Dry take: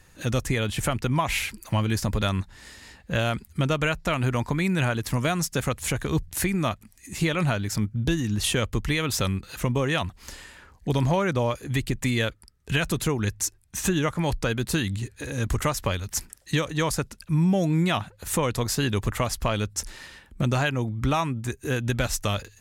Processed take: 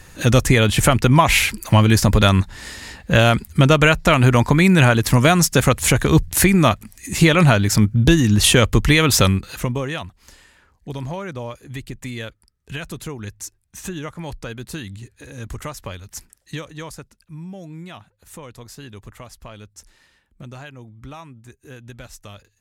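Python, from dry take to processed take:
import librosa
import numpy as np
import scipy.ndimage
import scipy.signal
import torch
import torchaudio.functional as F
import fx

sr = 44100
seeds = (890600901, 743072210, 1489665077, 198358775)

y = fx.gain(x, sr, db=fx.line((9.23, 11.0), (9.7, 2.0), (10.17, -6.0), (16.55, -6.0), (17.31, -13.5)))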